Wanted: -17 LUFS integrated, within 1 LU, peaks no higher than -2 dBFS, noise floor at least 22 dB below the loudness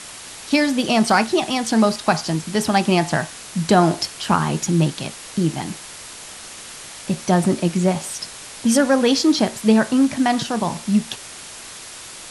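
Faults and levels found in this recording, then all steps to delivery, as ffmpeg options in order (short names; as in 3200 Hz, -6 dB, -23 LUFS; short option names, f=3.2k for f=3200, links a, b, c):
noise floor -37 dBFS; noise floor target -42 dBFS; loudness -19.5 LUFS; peak -2.5 dBFS; loudness target -17.0 LUFS
-> -af "afftdn=nr=6:nf=-37"
-af "volume=2.5dB,alimiter=limit=-2dB:level=0:latency=1"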